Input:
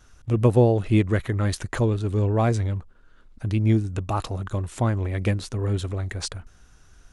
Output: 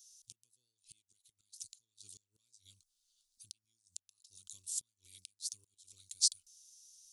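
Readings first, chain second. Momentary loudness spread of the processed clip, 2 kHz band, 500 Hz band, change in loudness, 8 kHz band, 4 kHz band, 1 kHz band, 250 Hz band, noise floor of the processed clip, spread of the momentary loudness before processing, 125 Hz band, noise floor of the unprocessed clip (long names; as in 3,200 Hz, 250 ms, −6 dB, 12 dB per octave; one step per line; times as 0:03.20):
25 LU, below −35 dB, below −40 dB, −13.5 dB, +2.5 dB, −2.5 dB, below −40 dB, below −40 dB, below −85 dBFS, 11 LU, below −40 dB, −54 dBFS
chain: gate with flip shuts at −16 dBFS, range −28 dB
inverse Chebyshev high-pass filter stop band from 1,900 Hz, stop band 50 dB
level +5.5 dB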